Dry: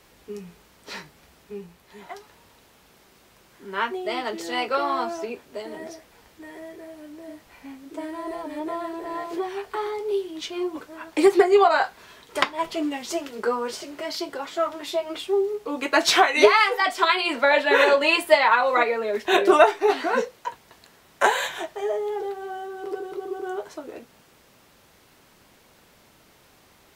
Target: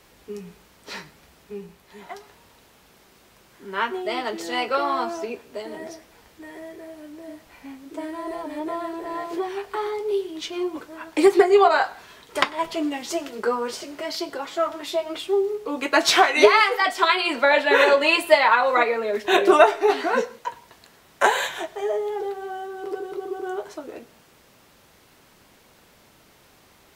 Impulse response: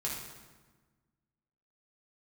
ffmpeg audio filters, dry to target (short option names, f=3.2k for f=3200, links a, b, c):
-filter_complex "[0:a]asplit=2[a][b];[1:a]atrim=start_sample=2205,atrim=end_sample=3969,adelay=95[c];[b][c]afir=irnorm=-1:irlink=0,volume=-23dB[d];[a][d]amix=inputs=2:normalize=0,volume=1dB"